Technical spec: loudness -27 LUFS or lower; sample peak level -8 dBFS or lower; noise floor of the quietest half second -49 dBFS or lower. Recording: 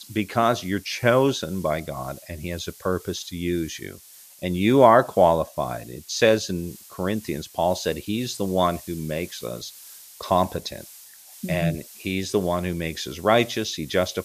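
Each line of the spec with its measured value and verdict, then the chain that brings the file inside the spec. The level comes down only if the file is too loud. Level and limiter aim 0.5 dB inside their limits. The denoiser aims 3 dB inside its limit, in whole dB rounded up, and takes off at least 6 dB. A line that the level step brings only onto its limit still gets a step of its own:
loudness -23.5 LUFS: fail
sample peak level -2.0 dBFS: fail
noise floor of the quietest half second -47 dBFS: fail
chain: trim -4 dB; peak limiter -8.5 dBFS

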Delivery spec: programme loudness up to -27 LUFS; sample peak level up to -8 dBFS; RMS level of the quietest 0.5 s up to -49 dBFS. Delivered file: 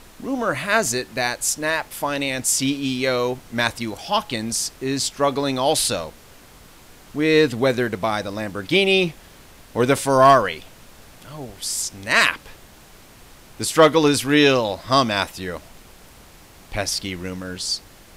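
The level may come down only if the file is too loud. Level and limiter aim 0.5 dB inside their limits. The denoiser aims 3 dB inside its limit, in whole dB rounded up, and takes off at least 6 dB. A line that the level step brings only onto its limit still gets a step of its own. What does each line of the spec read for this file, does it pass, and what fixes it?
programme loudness -20.5 LUFS: fail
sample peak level -3.5 dBFS: fail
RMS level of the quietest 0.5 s -46 dBFS: fail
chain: trim -7 dB

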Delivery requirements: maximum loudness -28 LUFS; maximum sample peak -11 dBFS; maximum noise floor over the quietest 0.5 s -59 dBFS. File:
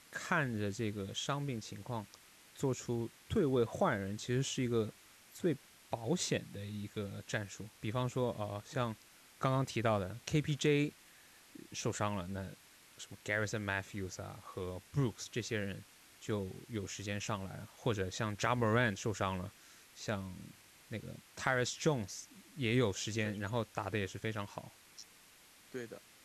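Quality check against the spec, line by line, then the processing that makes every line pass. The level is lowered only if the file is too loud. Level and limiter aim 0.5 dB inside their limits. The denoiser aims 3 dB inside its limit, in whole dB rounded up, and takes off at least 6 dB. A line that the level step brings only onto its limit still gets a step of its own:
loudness -37.5 LUFS: pass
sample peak -17.5 dBFS: pass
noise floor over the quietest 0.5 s -62 dBFS: pass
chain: none needed

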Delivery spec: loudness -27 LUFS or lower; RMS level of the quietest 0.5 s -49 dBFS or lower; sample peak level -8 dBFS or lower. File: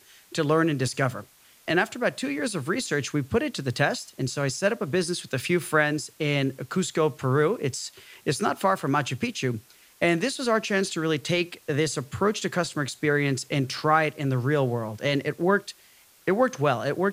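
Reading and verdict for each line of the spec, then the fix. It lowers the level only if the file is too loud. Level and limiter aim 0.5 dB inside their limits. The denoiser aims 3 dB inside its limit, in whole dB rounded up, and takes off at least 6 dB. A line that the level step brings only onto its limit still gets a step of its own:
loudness -26.0 LUFS: fail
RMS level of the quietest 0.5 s -56 dBFS: pass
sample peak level -7.0 dBFS: fail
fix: trim -1.5 dB

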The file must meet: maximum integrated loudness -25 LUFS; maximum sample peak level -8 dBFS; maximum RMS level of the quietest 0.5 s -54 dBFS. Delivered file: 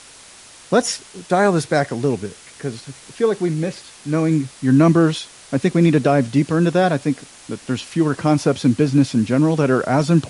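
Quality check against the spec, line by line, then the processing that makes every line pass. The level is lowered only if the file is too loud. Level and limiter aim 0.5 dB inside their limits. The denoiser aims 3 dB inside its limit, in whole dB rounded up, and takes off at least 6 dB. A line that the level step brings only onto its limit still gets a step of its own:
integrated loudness -18.5 LUFS: fail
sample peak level -4.0 dBFS: fail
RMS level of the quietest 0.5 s -43 dBFS: fail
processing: noise reduction 7 dB, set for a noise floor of -43 dBFS; trim -7 dB

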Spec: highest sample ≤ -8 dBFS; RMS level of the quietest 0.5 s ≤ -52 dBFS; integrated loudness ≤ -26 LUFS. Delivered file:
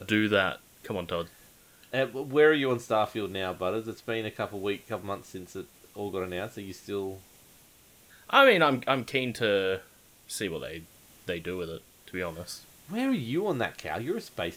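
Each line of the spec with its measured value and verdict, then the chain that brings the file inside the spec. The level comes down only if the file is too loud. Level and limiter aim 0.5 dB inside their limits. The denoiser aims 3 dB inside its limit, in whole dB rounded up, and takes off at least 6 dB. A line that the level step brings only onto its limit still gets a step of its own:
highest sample -6.0 dBFS: fail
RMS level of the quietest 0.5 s -58 dBFS: pass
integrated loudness -29.0 LUFS: pass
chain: peak limiter -8.5 dBFS

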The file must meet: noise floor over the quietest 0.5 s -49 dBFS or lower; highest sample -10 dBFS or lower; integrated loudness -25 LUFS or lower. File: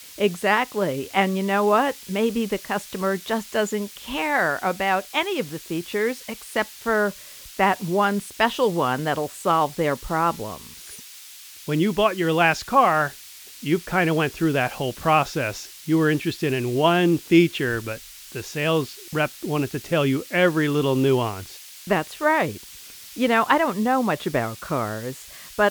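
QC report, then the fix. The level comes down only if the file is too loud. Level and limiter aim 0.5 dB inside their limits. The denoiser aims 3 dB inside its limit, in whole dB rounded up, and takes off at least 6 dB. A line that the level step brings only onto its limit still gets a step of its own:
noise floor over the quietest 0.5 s -43 dBFS: fail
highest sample -4.0 dBFS: fail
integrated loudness -22.5 LUFS: fail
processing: noise reduction 6 dB, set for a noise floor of -43 dBFS; trim -3 dB; peak limiter -10.5 dBFS

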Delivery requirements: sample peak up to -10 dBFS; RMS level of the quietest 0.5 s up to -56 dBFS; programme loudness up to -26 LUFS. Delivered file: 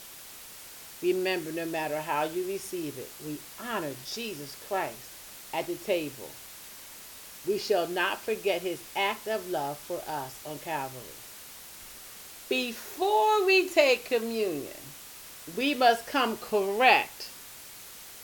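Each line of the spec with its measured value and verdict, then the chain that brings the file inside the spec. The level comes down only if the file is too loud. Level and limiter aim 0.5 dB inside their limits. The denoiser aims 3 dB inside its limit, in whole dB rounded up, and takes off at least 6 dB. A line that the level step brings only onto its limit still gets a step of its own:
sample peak -6.5 dBFS: fail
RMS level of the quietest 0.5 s -46 dBFS: fail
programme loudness -28.5 LUFS: pass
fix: noise reduction 13 dB, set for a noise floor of -46 dBFS; peak limiter -10.5 dBFS

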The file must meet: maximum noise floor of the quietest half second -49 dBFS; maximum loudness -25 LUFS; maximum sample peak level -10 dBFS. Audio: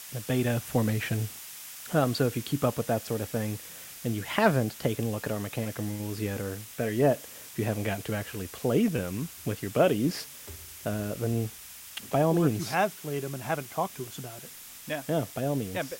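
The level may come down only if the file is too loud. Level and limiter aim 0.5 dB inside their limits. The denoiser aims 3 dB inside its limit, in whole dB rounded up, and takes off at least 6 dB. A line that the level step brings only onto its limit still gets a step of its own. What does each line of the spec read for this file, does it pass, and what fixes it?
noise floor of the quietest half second -46 dBFS: fail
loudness -29.5 LUFS: pass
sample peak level -8.5 dBFS: fail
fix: noise reduction 6 dB, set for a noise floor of -46 dBFS; peak limiter -10.5 dBFS

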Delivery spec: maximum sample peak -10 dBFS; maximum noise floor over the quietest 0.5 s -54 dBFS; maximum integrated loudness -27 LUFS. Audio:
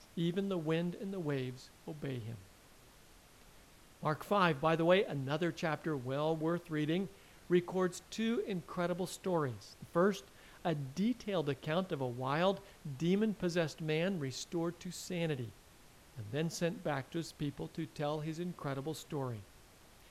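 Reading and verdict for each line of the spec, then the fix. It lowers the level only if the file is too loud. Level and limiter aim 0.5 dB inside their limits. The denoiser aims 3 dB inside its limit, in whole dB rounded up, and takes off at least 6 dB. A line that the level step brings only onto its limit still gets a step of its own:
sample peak -16.5 dBFS: pass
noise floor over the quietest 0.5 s -60 dBFS: pass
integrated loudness -36.5 LUFS: pass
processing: none needed

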